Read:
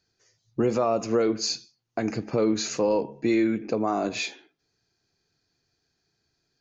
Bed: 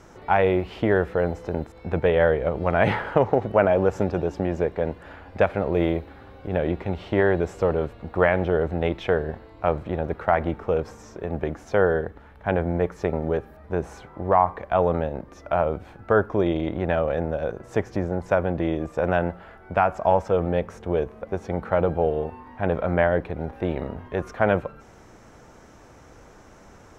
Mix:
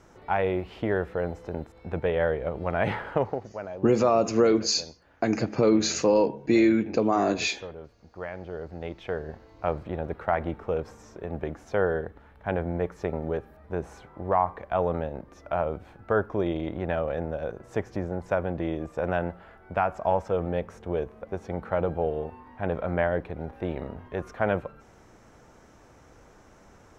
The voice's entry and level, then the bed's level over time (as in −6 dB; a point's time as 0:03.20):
3.25 s, +2.5 dB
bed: 0:03.23 −6 dB
0:03.55 −18 dB
0:08.15 −18 dB
0:09.61 −5 dB